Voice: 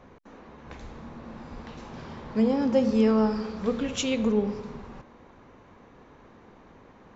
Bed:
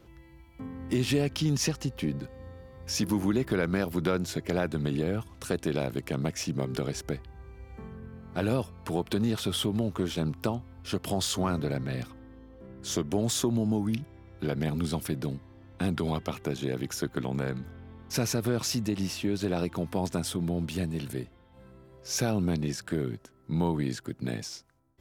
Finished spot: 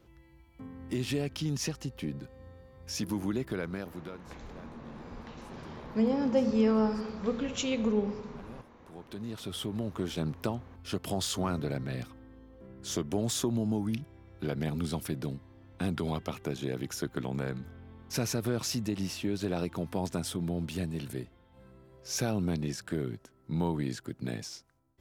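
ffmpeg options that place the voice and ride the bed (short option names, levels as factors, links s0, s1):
-filter_complex "[0:a]adelay=3600,volume=0.631[s0];[1:a]volume=5.31,afade=t=out:st=3.4:d=0.85:silence=0.133352,afade=t=in:st=8.86:d=1.35:silence=0.1[s1];[s0][s1]amix=inputs=2:normalize=0"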